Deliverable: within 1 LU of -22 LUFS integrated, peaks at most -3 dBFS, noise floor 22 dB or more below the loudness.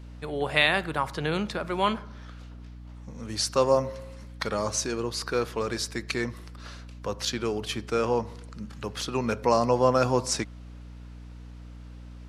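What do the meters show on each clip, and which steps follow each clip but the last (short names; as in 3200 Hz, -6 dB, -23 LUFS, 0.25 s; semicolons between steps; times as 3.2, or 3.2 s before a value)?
hum 60 Hz; harmonics up to 300 Hz; hum level -41 dBFS; loudness -27.5 LUFS; peak -5.0 dBFS; loudness target -22.0 LUFS
-> de-hum 60 Hz, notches 5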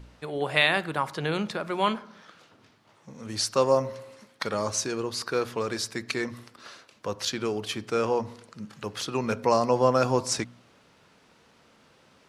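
hum none; loudness -27.5 LUFS; peak -5.5 dBFS; loudness target -22.0 LUFS
-> gain +5.5 dB; limiter -3 dBFS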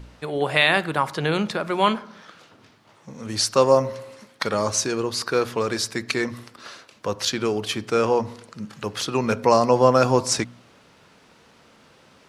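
loudness -22.0 LUFS; peak -3.0 dBFS; noise floor -55 dBFS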